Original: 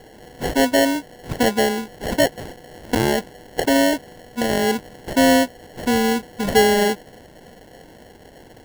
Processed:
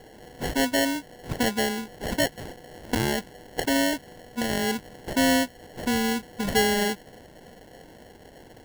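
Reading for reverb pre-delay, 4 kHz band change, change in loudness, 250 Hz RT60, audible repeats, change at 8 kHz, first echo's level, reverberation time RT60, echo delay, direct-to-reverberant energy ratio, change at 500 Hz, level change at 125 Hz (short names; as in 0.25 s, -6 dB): none, -4.0 dB, -6.5 dB, none, none, -3.5 dB, none, none, none, none, -9.0 dB, -4.5 dB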